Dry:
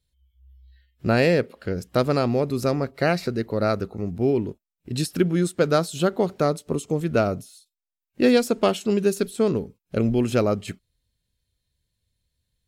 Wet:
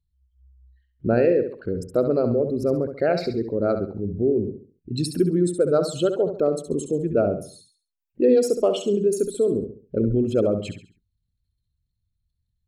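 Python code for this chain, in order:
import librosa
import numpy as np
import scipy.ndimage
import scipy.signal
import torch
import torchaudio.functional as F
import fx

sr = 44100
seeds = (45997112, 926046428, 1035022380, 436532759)

p1 = fx.envelope_sharpen(x, sr, power=2.0)
y = p1 + fx.echo_feedback(p1, sr, ms=68, feedback_pct=35, wet_db=-8.5, dry=0)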